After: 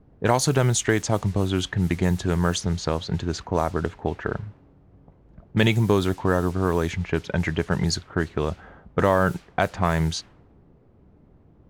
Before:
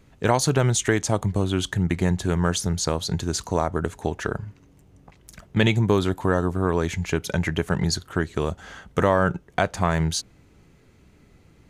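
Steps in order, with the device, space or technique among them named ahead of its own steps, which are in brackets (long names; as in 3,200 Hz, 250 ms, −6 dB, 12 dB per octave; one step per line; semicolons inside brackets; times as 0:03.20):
cassette deck with a dynamic noise filter (white noise bed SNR 23 dB; low-pass that shuts in the quiet parts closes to 420 Hz, open at −17 dBFS)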